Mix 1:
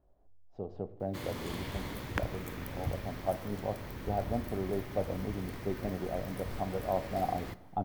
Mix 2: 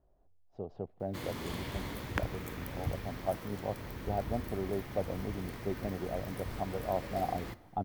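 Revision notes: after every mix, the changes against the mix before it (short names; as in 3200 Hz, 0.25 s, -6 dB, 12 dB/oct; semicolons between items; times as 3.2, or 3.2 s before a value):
speech: send off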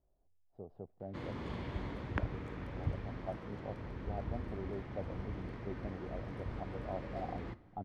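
speech -7.0 dB; master: add tape spacing loss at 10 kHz 28 dB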